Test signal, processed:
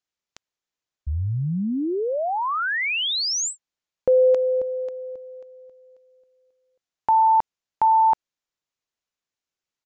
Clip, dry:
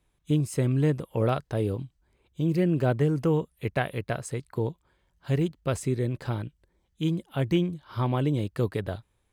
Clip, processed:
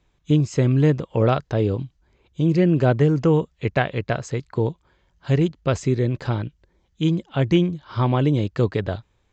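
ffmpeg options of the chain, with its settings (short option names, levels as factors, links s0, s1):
-af "aresample=16000,aresample=44100,volume=2.11"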